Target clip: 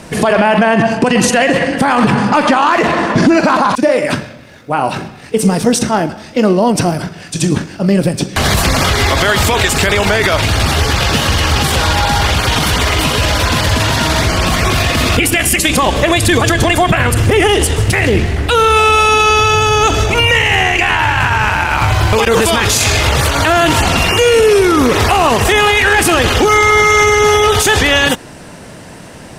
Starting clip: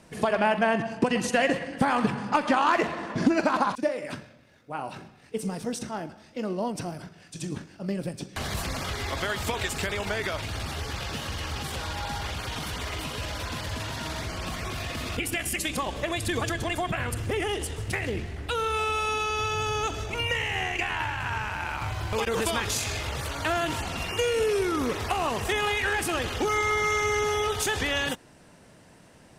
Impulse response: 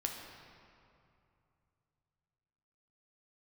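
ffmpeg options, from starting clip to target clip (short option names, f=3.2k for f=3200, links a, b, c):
-af "alimiter=level_in=21.5dB:limit=-1dB:release=50:level=0:latency=1,volume=-1dB"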